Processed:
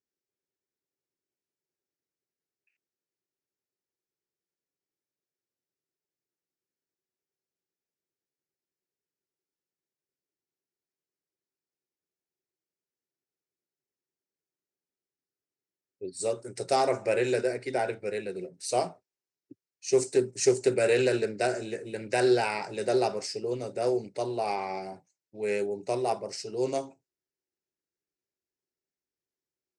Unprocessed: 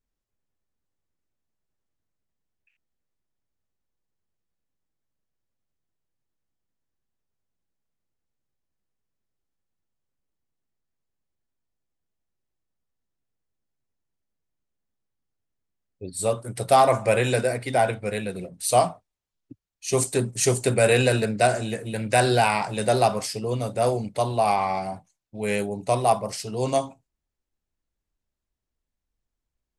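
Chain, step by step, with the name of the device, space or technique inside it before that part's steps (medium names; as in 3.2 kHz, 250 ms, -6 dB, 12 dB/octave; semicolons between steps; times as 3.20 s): 16.20–16.89 s: peaking EQ 6.8 kHz +6 dB 1.2 oct; full-range speaker at full volume (loudspeaker Doppler distortion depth 0.13 ms; cabinet simulation 190–8000 Hz, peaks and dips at 220 Hz -6 dB, 380 Hz +9 dB, 710 Hz -5 dB, 1.1 kHz -10 dB, 3.3 kHz -10 dB, 5.3 kHz +4 dB); trim -5 dB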